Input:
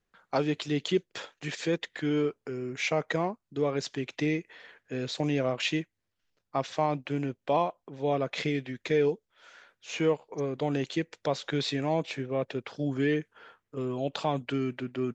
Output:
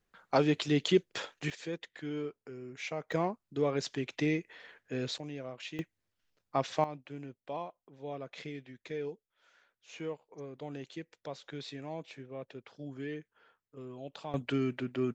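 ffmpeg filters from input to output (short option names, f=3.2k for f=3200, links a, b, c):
-af "asetnsamples=n=441:p=0,asendcmd='1.5 volume volume -10dB;3.12 volume volume -2dB;5.18 volume volume -14dB;5.79 volume volume -1dB;6.84 volume volume -13dB;14.34 volume volume -1dB',volume=1dB"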